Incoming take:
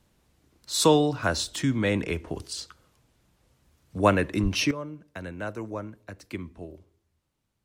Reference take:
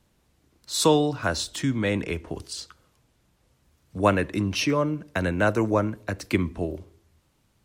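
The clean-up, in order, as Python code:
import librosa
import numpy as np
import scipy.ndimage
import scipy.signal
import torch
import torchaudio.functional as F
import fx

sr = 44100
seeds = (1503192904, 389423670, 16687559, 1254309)

y = fx.highpass(x, sr, hz=140.0, slope=24, at=(4.42, 4.54), fade=0.02)
y = fx.fix_level(y, sr, at_s=4.71, step_db=12.0)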